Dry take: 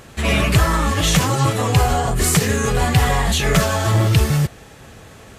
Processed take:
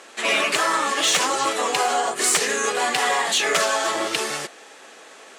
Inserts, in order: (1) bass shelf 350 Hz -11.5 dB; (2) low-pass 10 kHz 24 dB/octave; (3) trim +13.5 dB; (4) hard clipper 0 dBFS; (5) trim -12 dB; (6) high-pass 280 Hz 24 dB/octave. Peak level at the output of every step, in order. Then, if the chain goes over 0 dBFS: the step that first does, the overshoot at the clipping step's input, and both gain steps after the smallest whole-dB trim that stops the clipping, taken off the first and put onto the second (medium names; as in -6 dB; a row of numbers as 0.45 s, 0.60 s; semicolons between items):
-6.0 dBFS, -6.0 dBFS, +7.5 dBFS, 0.0 dBFS, -12.0 dBFS, -7.5 dBFS; step 3, 7.5 dB; step 3 +5.5 dB, step 5 -4 dB